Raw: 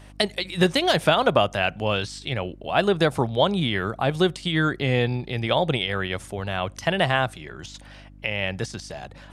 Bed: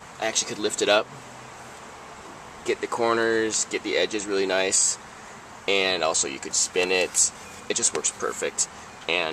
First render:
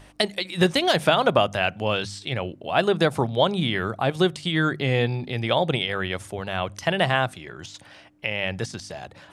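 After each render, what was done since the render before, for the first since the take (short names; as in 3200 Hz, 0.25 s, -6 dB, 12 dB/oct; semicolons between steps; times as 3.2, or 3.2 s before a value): de-hum 50 Hz, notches 5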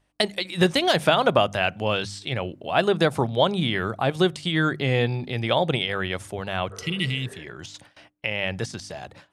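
gate with hold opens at -35 dBFS; 6.74–7.41 spectral repair 380–1900 Hz both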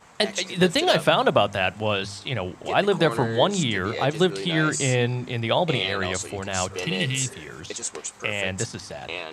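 add bed -8.5 dB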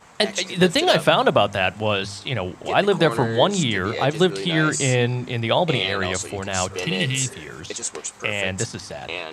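gain +2.5 dB; limiter -2 dBFS, peak gain reduction 1 dB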